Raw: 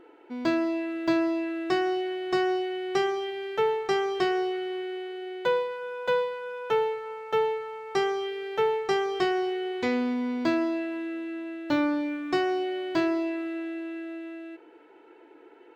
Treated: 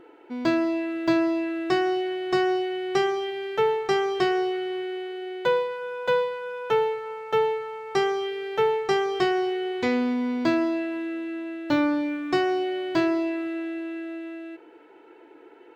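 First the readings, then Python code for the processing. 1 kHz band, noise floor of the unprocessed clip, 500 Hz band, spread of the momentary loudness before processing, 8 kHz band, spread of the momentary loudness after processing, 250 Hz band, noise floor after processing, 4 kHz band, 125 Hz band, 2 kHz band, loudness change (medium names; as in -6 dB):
+2.5 dB, -53 dBFS, +2.5 dB, 10 LU, no reading, 10 LU, +2.5 dB, -51 dBFS, +2.5 dB, +5.5 dB, +2.5 dB, +2.5 dB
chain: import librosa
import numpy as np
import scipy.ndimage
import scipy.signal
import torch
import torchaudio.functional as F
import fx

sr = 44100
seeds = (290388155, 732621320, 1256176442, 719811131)

y = fx.peak_eq(x, sr, hz=130.0, db=4.0, octaves=0.59)
y = y * librosa.db_to_amplitude(2.5)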